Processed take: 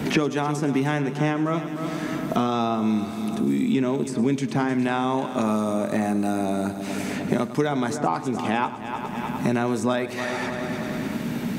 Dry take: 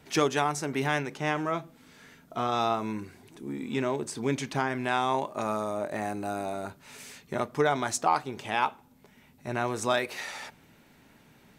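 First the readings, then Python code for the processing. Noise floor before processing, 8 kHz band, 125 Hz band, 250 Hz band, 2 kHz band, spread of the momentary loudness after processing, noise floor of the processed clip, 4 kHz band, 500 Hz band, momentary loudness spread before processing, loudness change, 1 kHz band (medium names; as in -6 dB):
-59 dBFS, 0.0 dB, +9.0 dB, +12.0 dB, +2.5 dB, 6 LU, -32 dBFS, +2.0 dB, +4.5 dB, 13 LU, +5.0 dB, +2.0 dB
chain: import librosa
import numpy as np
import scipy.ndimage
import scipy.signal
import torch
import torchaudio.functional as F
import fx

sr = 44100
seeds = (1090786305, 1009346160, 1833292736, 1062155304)

y = fx.peak_eq(x, sr, hz=220.0, db=12.5, octaves=1.5)
y = fx.echo_heads(y, sr, ms=102, heads='first and third', feedback_pct=51, wet_db=-16.0)
y = fx.band_squash(y, sr, depth_pct=100)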